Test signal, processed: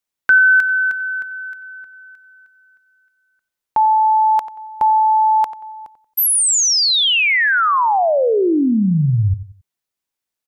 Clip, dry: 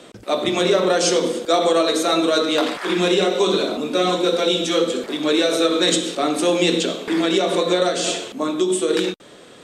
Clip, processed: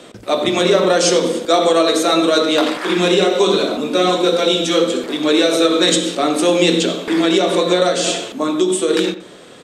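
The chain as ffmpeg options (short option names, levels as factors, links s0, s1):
-filter_complex "[0:a]asplit=2[s0][s1];[s1]adelay=91,lowpass=f=2300:p=1,volume=0.224,asplit=2[s2][s3];[s3]adelay=91,lowpass=f=2300:p=1,volume=0.32,asplit=2[s4][s5];[s5]adelay=91,lowpass=f=2300:p=1,volume=0.32[s6];[s0][s2][s4][s6]amix=inputs=4:normalize=0,volume=1.5"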